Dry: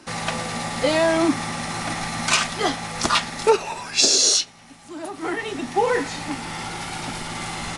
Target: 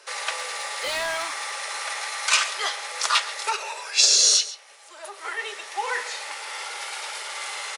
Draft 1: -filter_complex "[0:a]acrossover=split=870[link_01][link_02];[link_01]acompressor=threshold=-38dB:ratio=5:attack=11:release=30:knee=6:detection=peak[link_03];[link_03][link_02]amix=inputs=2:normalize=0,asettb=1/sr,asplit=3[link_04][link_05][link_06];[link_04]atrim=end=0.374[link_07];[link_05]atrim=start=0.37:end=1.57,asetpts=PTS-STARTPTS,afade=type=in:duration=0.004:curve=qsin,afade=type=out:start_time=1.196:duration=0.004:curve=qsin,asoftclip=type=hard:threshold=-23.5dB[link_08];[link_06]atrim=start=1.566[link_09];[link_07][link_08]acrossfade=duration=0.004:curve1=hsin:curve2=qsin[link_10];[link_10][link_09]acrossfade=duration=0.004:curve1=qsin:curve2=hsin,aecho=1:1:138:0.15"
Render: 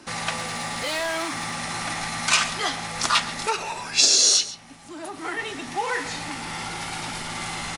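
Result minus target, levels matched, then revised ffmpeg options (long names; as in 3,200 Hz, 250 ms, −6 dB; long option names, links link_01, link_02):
500 Hz band +3.0 dB
-filter_complex "[0:a]acrossover=split=870[link_01][link_02];[link_01]acompressor=threshold=-38dB:ratio=5:attack=11:release=30:knee=6:detection=peak,asuperpass=centerf=570:order=12:qfactor=1.5[link_03];[link_03][link_02]amix=inputs=2:normalize=0,asettb=1/sr,asplit=3[link_04][link_05][link_06];[link_04]atrim=end=0.374[link_07];[link_05]atrim=start=0.37:end=1.57,asetpts=PTS-STARTPTS,afade=type=in:duration=0.004:curve=qsin,afade=type=out:start_time=1.196:duration=0.004:curve=qsin,asoftclip=type=hard:threshold=-23.5dB[link_08];[link_06]atrim=start=1.566[link_09];[link_07][link_08]acrossfade=duration=0.004:curve1=hsin:curve2=qsin[link_10];[link_10][link_09]acrossfade=duration=0.004:curve1=qsin:curve2=hsin,aecho=1:1:138:0.15"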